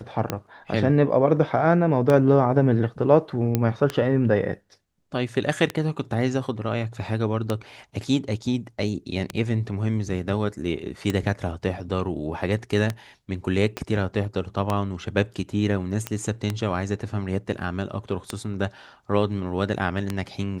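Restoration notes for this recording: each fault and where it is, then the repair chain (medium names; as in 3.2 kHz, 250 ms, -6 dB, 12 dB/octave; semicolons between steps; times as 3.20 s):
tick 33 1/3 rpm -10 dBFS
3.55 s: pop -8 dBFS
13.77 s: pop -14 dBFS
16.07 s: pop -11 dBFS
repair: de-click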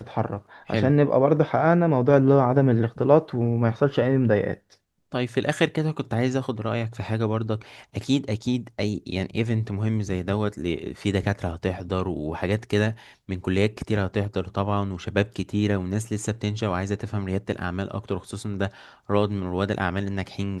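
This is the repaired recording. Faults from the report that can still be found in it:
13.77 s: pop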